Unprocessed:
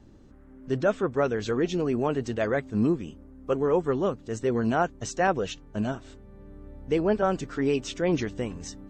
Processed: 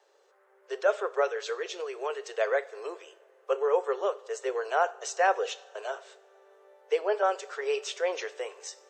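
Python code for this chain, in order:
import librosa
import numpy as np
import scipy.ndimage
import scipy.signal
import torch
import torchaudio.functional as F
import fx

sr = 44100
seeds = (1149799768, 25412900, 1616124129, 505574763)

y = scipy.signal.sosfilt(scipy.signal.butter(12, 420.0, 'highpass', fs=sr, output='sos'), x)
y = fx.dynamic_eq(y, sr, hz=670.0, q=0.96, threshold_db=-40.0, ratio=4.0, max_db=-7, at=(1.24, 2.32), fade=0.02)
y = fx.rev_double_slope(y, sr, seeds[0], early_s=0.51, late_s=3.3, knee_db=-19, drr_db=12.5)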